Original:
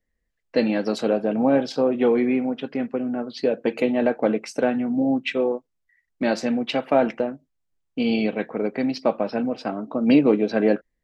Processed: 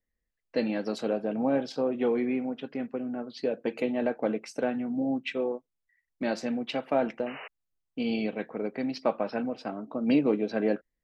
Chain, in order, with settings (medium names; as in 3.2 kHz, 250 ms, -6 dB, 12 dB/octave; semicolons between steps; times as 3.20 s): 7.26–7.48 s: painted sound noise 390–3000 Hz -35 dBFS; 8.93–9.51 s: peaking EQ 1.5 kHz +5 dB 2.2 oct; trim -7.5 dB